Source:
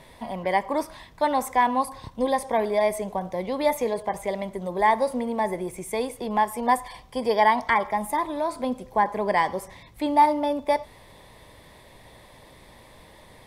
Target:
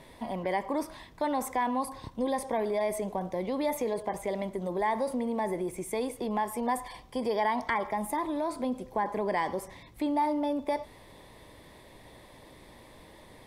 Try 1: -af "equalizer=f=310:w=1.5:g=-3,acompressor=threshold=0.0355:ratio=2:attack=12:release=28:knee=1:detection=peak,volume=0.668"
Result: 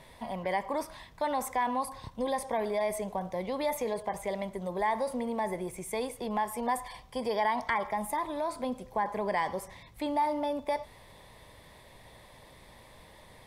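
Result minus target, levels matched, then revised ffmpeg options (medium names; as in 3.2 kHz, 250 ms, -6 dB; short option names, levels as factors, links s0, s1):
250 Hz band -3.0 dB
-af "equalizer=f=310:w=1.5:g=5.5,acompressor=threshold=0.0355:ratio=2:attack=12:release=28:knee=1:detection=peak,volume=0.668"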